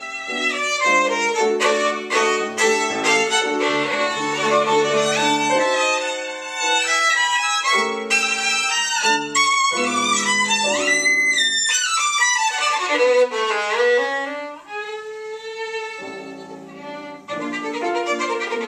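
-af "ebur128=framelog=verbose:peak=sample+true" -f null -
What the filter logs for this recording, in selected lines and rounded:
Integrated loudness:
  I:         -18.0 LUFS
  Threshold: -28.6 LUFS
Loudness range:
  LRA:         9.7 LU
  Threshold: -38.3 LUFS
  LRA low:   -26.2 LUFS
  LRA high:  -16.5 LUFS
Sample peak:
  Peak:       -5.2 dBFS
True peak:
  Peak:       -5.2 dBFS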